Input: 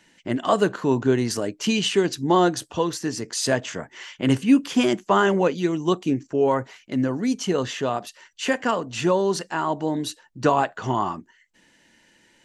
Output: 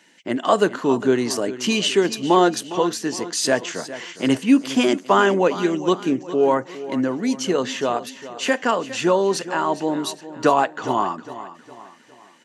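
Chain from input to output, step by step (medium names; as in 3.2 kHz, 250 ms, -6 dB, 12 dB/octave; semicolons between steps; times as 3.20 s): high-pass 220 Hz 12 dB/octave; feedback delay 409 ms, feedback 42%, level -14.5 dB; trim +3 dB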